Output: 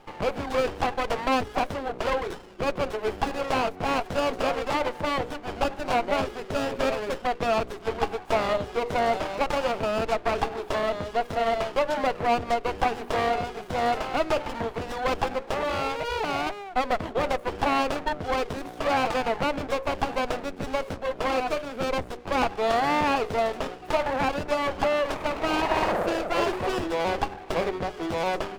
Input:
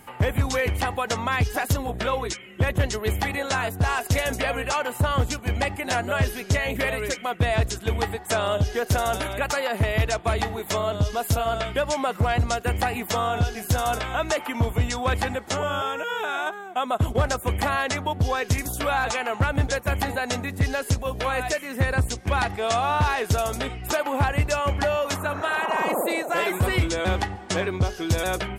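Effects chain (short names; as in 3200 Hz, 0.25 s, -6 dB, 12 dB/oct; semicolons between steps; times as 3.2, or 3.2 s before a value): three-band isolator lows -21 dB, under 280 Hz, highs -23 dB, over 4300 Hz; notches 60/120/180/240/300/360/420/480/540/600 Hz; running maximum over 17 samples; gain +2 dB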